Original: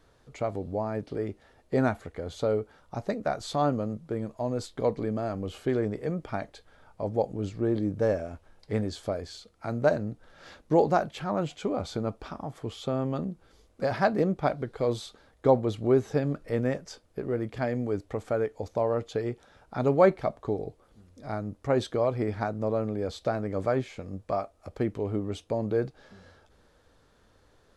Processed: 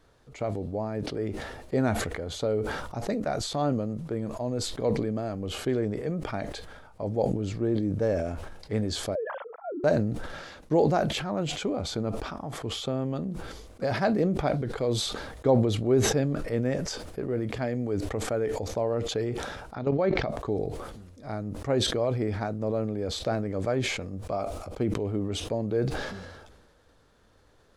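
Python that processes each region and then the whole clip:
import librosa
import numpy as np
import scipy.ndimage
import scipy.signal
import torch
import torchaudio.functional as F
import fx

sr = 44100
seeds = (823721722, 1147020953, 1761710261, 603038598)

y = fx.chain(x, sr, fx.sine_speech(),
    fx.lowpass(hz=1100.0, slope=24), at=(9.15, 9.84))
y = fx.chain(y, sr, fx.lowpass(hz=5600.0, slope=24),
    fx.level_steps(step_db=11), at=(19.75, 20.29))
y = fx.chain(y, sr, fx.peak_eq(hz=1800.0, db=-8.0, octaves=0.21),
    fx.sustainer(db_per_s=150.0), at=(24.26, 24.94))
y = fx.dynamic_eq(y, sr, hz=1100.0, q=0.99, threshold_db=-39.0, ratio=4.0, max_db=-5)
y = fx.sustainer(y, sr, db_per_s=40.0)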